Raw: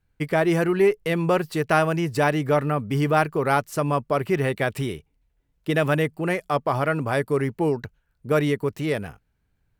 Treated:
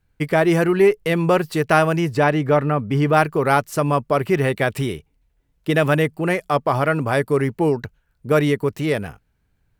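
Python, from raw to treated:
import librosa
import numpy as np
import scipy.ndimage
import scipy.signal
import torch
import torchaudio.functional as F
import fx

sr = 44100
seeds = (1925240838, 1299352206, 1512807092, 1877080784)

y = fx.high_shelf(x, sr, hz=5600.0, db=-12.0, at=(2.14, 3.13))
y = y * librosa.db_to_amplitude(4.0)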